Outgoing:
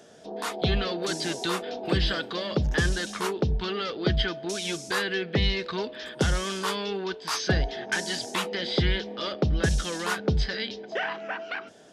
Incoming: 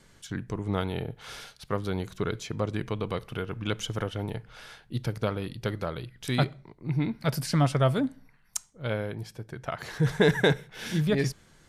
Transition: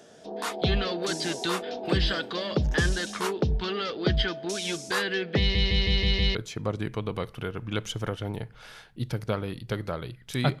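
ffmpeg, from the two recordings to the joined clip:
-filter_complex "[0:a]apad=whole_dur=10.6,atrim=end=10.6,asplit=6[a][b][c][d][e][f];[a]atrim=end=5.552[g];[b]atrim=start=5.388:end=5.552[h];[c]atrim=start=5.388:end=5.552[i];[d]atrim=start=5.388:end=5.552[j];[e]atrim=start=5.388:end=5.552[k];[f]atrim=start=5.388:end=5.552[l];[1:a]atrim=start=2.288:end=6.54[m];[g][h]acrossfade=d=0.004:c1=hsin:c2=hsin[n];[n][i]acrossfade=d=0.004:c1=hsin:c2=hsin[o];[o][j]acrossfade=d=0.004:c1=hsin:c2=hsin[p];[p][k]acrossfade=d=0.004:c1=hsin:c2=hsin[q];[q][l]acrossfade=d=0.004:c1=hsin:c2=hsin[r];[r][m]acrossfade=d=0.004:c1=hsin:c2=hsin"

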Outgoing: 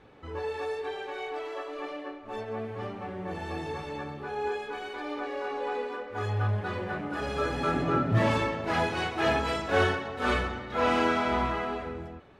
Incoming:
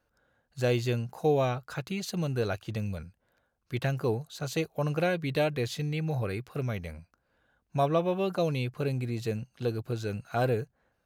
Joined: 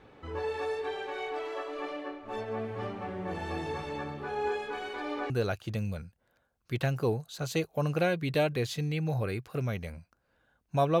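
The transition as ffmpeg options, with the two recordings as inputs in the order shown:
-filter_complex "[0:a]apad=whole_dur=11,atrim=end=11,atrim=end=5.302[a];[1:a]atrim=start=2.308:end=8.01[b];[a][b]acrossfade=d=0.004:c1=hsin:c2=hsin"

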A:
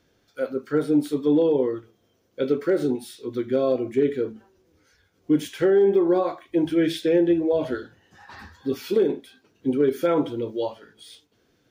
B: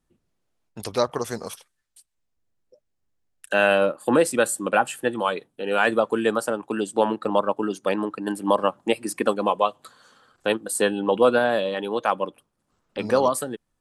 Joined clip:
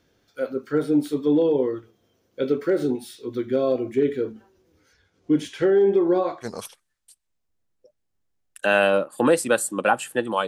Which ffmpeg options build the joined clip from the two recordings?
-filter_complex "[0:a]asettb=1/sr,asplit=3[a][b][c];[a]atrim=end=4.934[d];[b]atrim=start=4.93:end=6.47,asetpts=PTS-STARTPTS,afade=t=in:d=0.004:c=qsin,afade=t=out:st=1.536:d=0.004:c=qsin,lowpass=8.7k[e];[c]atrim=start=6.466[f];[d][e]acrossfade=d=0.004:c1=hsin:c2=qsin[g];[g][f]acrossfade=d=0.004:c1=qsin:c2=hsin,apad=whole_dur=10.47,atrim=end=10.47,atrim=end=6.47,asetpts=PTS-STARTPTS[h];[1:a]atrim=start=1.29:end=5.35,asetpts=PTS-STARTPTS[i];[h][i]acrossfade=d=0.06:c1=tri:c2=tri"

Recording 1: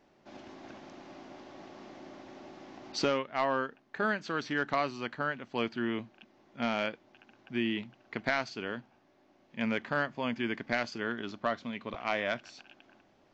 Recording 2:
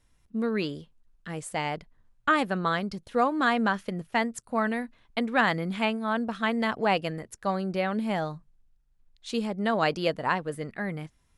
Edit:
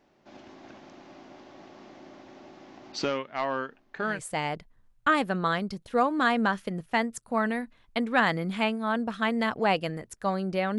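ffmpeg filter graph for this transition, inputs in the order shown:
-filter_complex "[1:a]asplit=2[a][b];[0:a]apad=whole_dur=10.78,atrim=end=10.78,atrim=end=4.192[c];[b]atrim=start=1.398:end=7.99[d];[a]atrim=start=0.9:end=1.4,asetpts=PTS-STARTPTS,volume=-9dB,afade=t=in:d=0.004:c=hsin,afade=t=out:st=0.496:d=0.004:c=hsin,adelay=162729S[e];[c][d]acrossfade=d=0.004:c1=hsin:c2=hsin[f];[f][e]amix=inputs=2:normalize=0"

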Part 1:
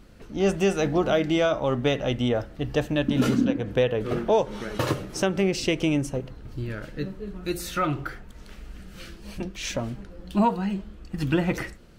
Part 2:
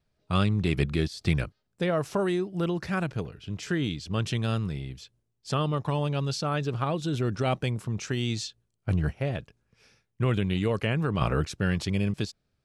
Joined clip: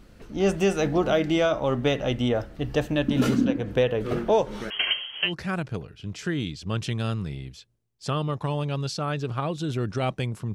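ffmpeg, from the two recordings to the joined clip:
-filter_complex "[0:a]asettb=1/sr,asplit=3[a][b][c];[a]atrim=end=4.704[d];[b]atrim=start=4.7:end=5.34,asetpts=PTS-STARTPTS,afade=t=in:d=0.004:c=qsin,afade=t=out:st=0.636:d=0.004:c=qsin,lowpass=f=2.8k:t=q:w=0.5098,lowpass=f=2.8k:t=q:w=0.6013,lowpass=f=2.8k:t=q:w=0.9,lowpass=f=2.8k:t=q:w=2.563,afreqshift=-3300[e];[c]atrim=start=5.336[f];[d][e]acrossfade=d=0.004:c1=hsin:c2=qsin[g];[g][f]acrossfade=d=0.004:c1=qsin:c2=hsin,apad=whole_dur=10.54,atrim=end=10.54,atrim=end=5.34,asetpts=PTS-STARTPTS[h];[1:a]atrim=start=2.66:end=7.98,asetpts=PTS-STARTPTS[i];[h][i]acrossfade=d=0.12:c1=tri:c2=tri"

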